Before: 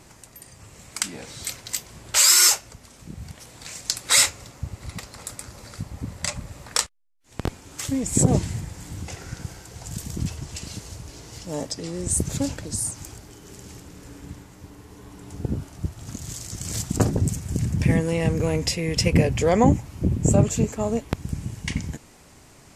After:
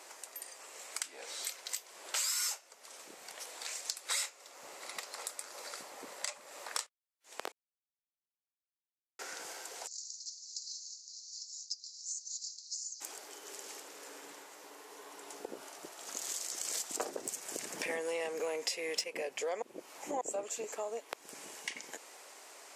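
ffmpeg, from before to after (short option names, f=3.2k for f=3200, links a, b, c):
-filter_complex "[0:a]asplit=3[a][b][c];[a]afade=t=out:st=9.86:d=0.02[d];[b]asuperpass=centerf=5500:order=12:qfactor=1.8,afade=t=in:st=9.86:d=0.02,afade=t=out:st=13:d=0.02[e];[c]afade=t=in:st=13:d=0.02[f];[d][e][f]amix=inputs=3:normalize=0,asettb=1/sr,asplit=3[g][h][i];[g]atrim=end=16.164[j];[h]atrim=start=16.16:end=19.04,asetpts=PTS-STARTPTS,afade=t=in:d=0.004:c=qsin,afade=t=out:st=2.876:d=0.004:c=qsin,acontrast=87[k];[i]atrim=start=19.036[l];[j][k]acrossfade=d=0.004:c1=hsin:c2=qsin[m];[m][l]acrossfade=d=0.004:c1=qsin:c2=hsin,asplit=5[n][o][p][q][r];[n]atrim=end=7.52,asetpts=PTS-STARTPTS,afade=t=out:st=7.516:d=0.004:c=hsin[s];[o]atrim=start=7.52:end=9.19,asetpts=PTS-STARTPTS,volume=0[t];[p]atrim=start=9.19:end=19.622,asetpts=PTS-STARTPTS,afade=t=in:d=0.004:c=hsin[u];[q]atrim=start=19.618:end=20.212,asetpts=PTS-STARTPTS,areverse[v];[r]atrim=start=20.208[w];[s][t][u]concat=n=3:v=0:a=1[x];[x][v]acrossfade=d=0.004:c1=hsin:c2=hsin[y];[y][w]acrossfade=d=0.004:c1=hsin:c2=hsin,highpass=f=450:w=0.5412,highpass=f=450:w=1.3066,acompressor=threshold=-39dB:ratio=3"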